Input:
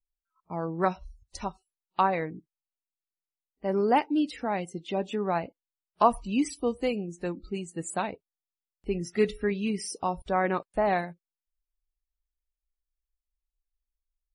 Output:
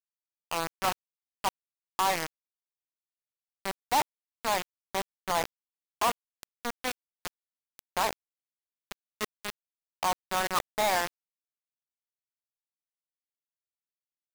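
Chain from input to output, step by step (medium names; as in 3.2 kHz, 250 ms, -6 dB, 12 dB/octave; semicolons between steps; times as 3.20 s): reverse; compression 6:1, threshold -33 dBFS, peak gain reduction 17 dB; reverse; band-pass filter 1.1 kHz, Q 1.4; companded quantiser 2-bit; trim +4.5 dB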